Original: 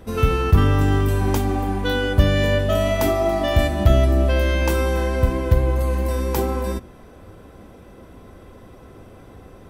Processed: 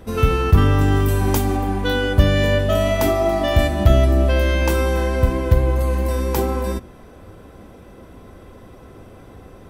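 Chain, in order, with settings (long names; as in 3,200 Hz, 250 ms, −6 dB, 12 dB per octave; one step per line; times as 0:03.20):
0:00.95–0:01.56: high-shelf EQ 9,300 Hz → 5,500 Hz +7 dB
level +1.5 dB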